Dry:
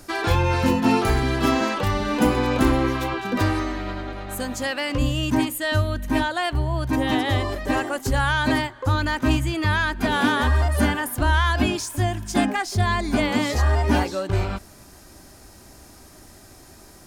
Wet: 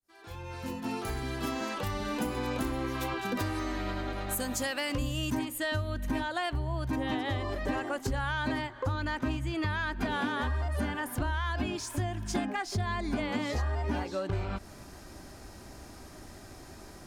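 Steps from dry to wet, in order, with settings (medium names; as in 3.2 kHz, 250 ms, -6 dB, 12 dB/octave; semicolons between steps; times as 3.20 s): fade-in on the opening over 5.31 s; treble shelf 6.9 kHz +8 dB, from 5.39 s -4 dB, from 6.96 s -10.5 dB; compression 6:1, threshold -29 dBFS, peak gain reduction 13.5 dB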